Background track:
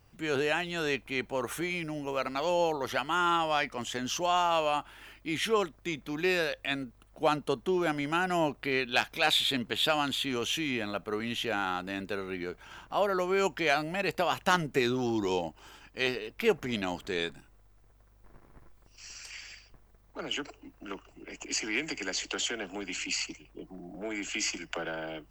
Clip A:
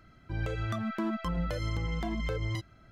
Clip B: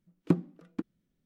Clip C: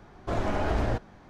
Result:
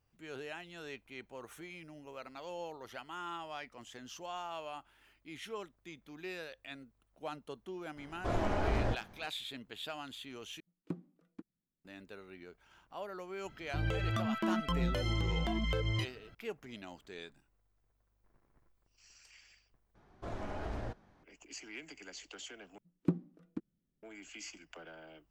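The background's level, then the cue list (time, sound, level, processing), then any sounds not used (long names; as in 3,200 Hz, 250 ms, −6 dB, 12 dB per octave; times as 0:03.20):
background track −15.5 dB
0:07.97: mix in C −5 dB
0:10.60: overwrite with B −15.5 dB
0:13.44: mix in A −1 dB + parametric band 3,000 Hz +8.5 dB 0.32 octaves
0:19.95: overwrite with C −13 dB
0:22.78: overwrite with B −11 dB + low-shelf EQ 490 Hz +6 dB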